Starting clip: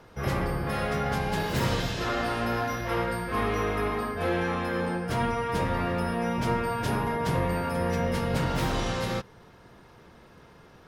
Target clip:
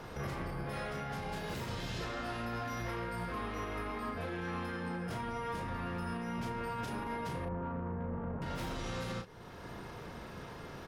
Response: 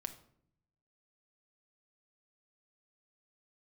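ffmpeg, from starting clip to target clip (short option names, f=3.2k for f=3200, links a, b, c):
-filter_complex "[0:a]asettb=1/sr,asplit=3[a][b][c];[a]atrim=end=7.454[d];[b]atrim=start=7.45:end=8.42,asetpts=PTS-STARTPTS,afade=t=in:d=0.004:c=qsin,afade=t=out:st=0.966:d=0.004:c=qsin,lowpass=f=1.2k:w=0.5412,lowpass=f=1.2k:w=1.3066[e];[c]atrim=start=8.416[f];[d][e]acrossfade=d=0.004:c1=hsin:c2=qsin[g];[g][f]acrossfade=d=0.004:c1=qsin:c2=hsin,alimiter=level_in=11dB:limit=-24dB:level=0:latency=1:release=492,volume=-11dB,asoftclip=type=tanh:threshold=-38dB,asplit=2[h][i];[i]adelay=35,volume=-5.5dB[j];[h][j]amix=inputs=2:normalize=0,volume=5.5dB"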